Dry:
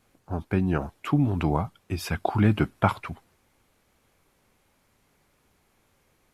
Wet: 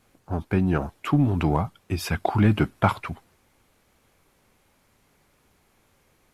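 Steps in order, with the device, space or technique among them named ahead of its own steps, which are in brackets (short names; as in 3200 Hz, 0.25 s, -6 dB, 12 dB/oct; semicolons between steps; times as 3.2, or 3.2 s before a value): parallel distortion (in parallel at -8 dB: hard clip -21 dBFS, distortion -8 dB)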